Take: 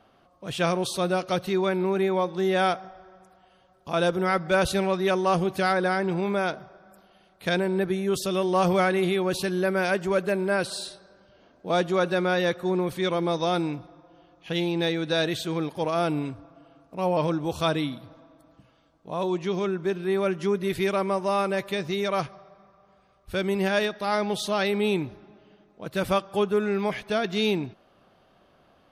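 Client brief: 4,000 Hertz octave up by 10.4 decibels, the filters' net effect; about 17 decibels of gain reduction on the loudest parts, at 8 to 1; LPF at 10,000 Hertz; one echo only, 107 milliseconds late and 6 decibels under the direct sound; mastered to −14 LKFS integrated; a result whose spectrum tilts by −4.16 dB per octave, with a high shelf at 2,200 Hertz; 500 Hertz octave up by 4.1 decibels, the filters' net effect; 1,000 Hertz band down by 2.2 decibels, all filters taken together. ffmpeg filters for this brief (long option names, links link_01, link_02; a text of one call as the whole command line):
ffmpeg -i in.wav -af "lowpass=10000,equalizer=frequency=500:width_type=o:gain=7,equalizer=frequency=1000:width_type=o:gain=-8.5,highshelf=frequency=2200:gain=7.5,equalizer=frequency=4000:width_type=o:gain=6,acompressor=threshold=-33dB:ratio=8,aecho=1:1:107:0.501,volume=21dB" out.wav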